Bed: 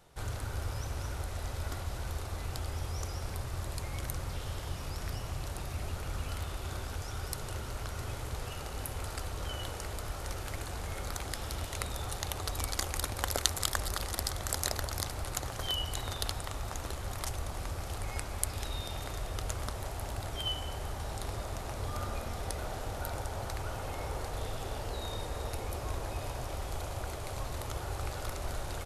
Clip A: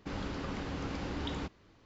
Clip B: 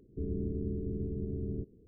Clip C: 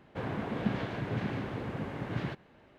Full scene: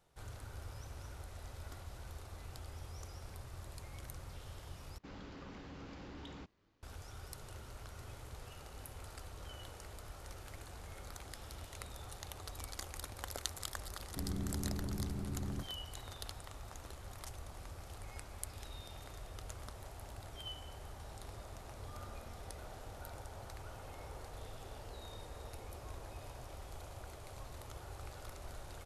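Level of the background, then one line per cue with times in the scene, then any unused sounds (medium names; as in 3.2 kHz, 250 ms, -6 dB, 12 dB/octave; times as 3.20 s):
bed -11.5 dB
4.98 s: replace with A -15 dB + waveshaping leveller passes 1
13.99 s: add B -3.5 dB + peaking EQ 460 Hz -13 dB 0.5 oct
not used: C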